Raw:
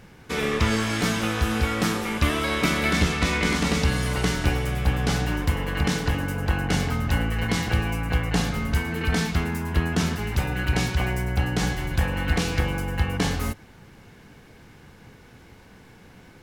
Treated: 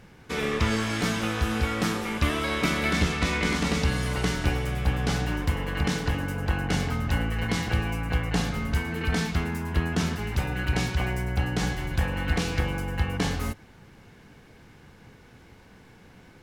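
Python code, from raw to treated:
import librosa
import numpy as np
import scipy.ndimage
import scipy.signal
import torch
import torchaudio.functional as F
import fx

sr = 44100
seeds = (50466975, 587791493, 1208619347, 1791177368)

y = fx.high_shelf(x, sr, hz=9500.0, db=-4.0)
y = y * 10.0 ** (-2.5 / 20.0)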